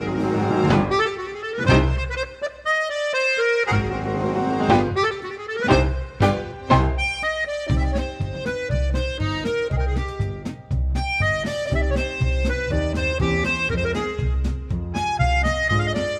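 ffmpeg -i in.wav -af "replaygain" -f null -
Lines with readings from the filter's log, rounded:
track_gain = +3.3 dB
track_peak = 0.405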